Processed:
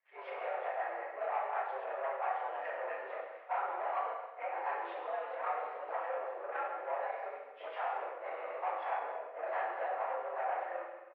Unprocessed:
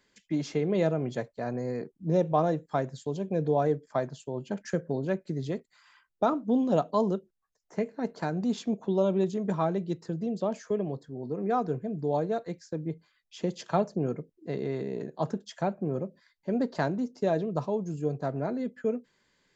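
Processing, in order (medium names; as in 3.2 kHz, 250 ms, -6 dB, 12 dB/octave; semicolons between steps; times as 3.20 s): phase randomisation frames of 200 ms; harmonic-percussive split harmonic -11 dB; compression 12:1, threshold -35 dBFS, peak gain reduction 12 dB; waveshaping leveller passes 3; granular stretch 0.57×, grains 64 ms; feedback delay 135 ms, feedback 42%, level -13 dB; gated-style reverb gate 370 ms falling, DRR -1 dB; mistuned SSB +100 Hz 520–2400 Hz; endings held to a fixed fall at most 280 dB/s; trim -2.5 dB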